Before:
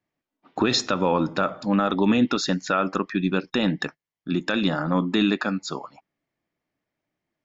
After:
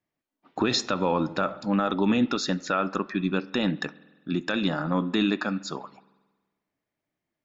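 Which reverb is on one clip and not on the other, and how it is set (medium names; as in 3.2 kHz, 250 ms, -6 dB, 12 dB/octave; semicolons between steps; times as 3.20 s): spring tank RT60 1.3 s, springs 46 ms, chirp 25 ms, DRR 19 dB; trim -3 dB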